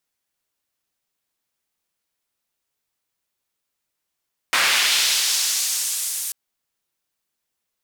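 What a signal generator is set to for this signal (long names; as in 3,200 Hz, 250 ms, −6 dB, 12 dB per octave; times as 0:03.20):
filter sweep on noise white, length 1.79 s bandpass, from 1,500 Hz, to 9,200 Hz, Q 1.1, linear, gain ramp −15 dB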